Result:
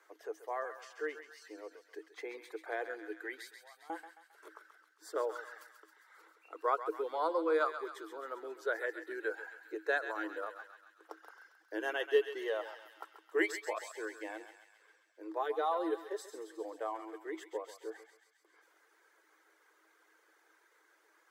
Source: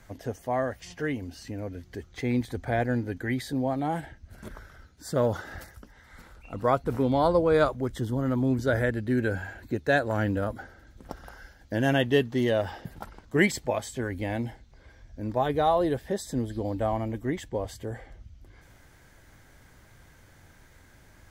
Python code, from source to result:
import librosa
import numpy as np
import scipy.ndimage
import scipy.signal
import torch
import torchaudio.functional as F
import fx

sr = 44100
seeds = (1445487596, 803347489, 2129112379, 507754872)

y = fx.dereverb_blind(x, sr, rt60_s=0.84)
y = scipy.signal.sosfilt(scipy.signal.cheby1(6, 9, 310.0, 'highpass', fs=sr, output='sos'), y)
y = fx.differentiator(y, sr, at=(3.47, 3.9))
y = fx.echo_thinned(y, sr, ms=134, feedback_pct=69, hz=1000.0, wet_db=-8.5)
y = y * 10.0 ** (-3.0 / 20.0)